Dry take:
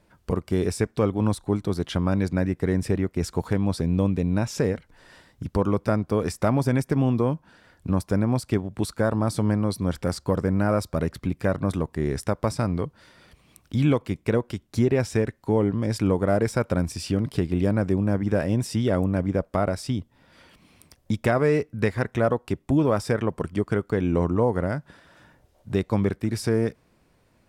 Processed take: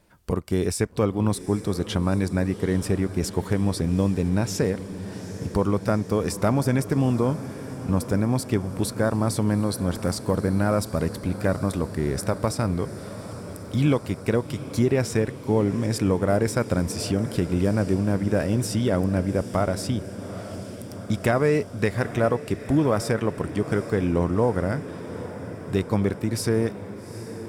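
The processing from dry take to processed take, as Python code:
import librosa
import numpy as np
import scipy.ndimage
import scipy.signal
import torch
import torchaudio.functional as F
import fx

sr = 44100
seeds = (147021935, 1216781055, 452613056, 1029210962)

y = fx.high_shelf(x, sr, hz=5900.0, db=7.5)
y = fx.echo_diffused(y, sr, ms=815, feedback_pct=72, wet_db=-14.0)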